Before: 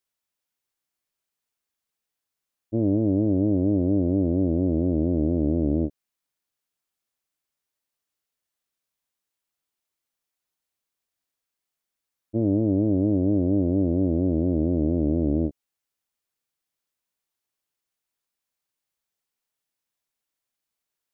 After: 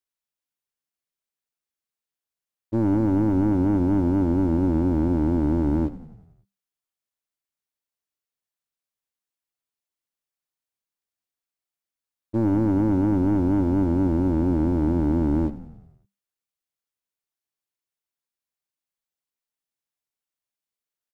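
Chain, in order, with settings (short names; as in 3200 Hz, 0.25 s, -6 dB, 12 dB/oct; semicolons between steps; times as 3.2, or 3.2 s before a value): sample leveller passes 2; frequency-shifting echo 92 ms, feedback 60%, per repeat -33 Hz, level -16 dB; gain -3 dB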